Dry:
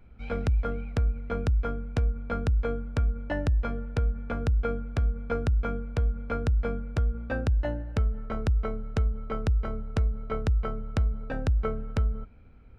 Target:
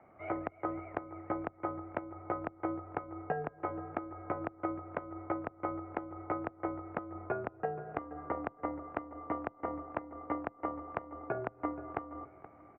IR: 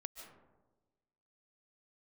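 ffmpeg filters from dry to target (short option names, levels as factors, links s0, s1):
-filter_complex "[0:a]highpass=200,equalizer=f=880:w=2.3:g=14.5,acompressor=threshold=0.02:ratio=6,asplit=2[s0][s1];[s1]adelay=476,lowpass=f=1700:p=1,volume=0.2,asplit=2[s2][s3];[s3]adelay=476,lowpass=f=1700:p=1,volume=0.29,asplit=2[s4][s5];[s5]adelay=476,lowpass=f=1700:p=1,volume=0.29[s6];[s2][s4][s6]amix=inputs=3:normalize=0[s7];[s0][s7]amix=inputs=2:normalize=0,highpass=f=280:t=q:w=0.5412,highpass=f=280:t=q:w=1.307,lowpass=f=2300:t=q:w=0.5176,lowpass=f=2300:t=q:w=0.7071,lowpass=f=2300:t=q:w=1.932,afreqshift=-140,volume=1.26"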